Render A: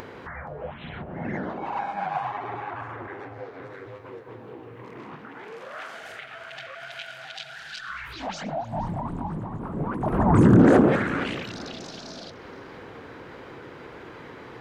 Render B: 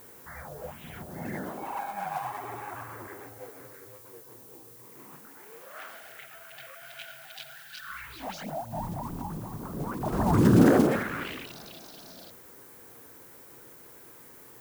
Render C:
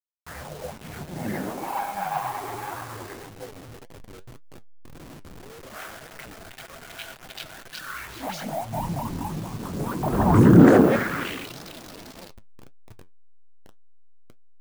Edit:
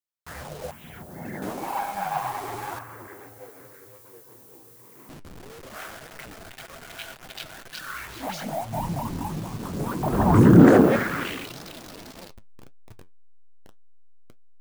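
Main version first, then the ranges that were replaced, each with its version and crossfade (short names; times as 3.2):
C
0.71–1.42 from B
2.79–5.09 from B
not used: A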